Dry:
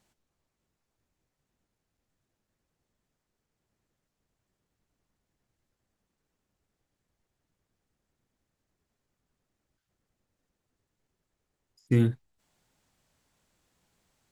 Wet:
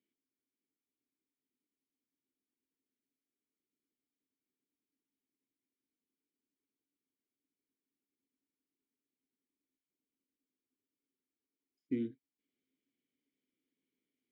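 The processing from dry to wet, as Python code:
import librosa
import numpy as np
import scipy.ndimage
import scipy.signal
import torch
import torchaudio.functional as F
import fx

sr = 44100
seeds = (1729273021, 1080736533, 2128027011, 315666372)

y = fx.vowel_filter(x, sr, vowel='i')
y = fx.peak_eq(y, sr, hz=430.0, db=13.0, octaves=0.78)
y = y * librosa.db_to_amplitude(-5.5)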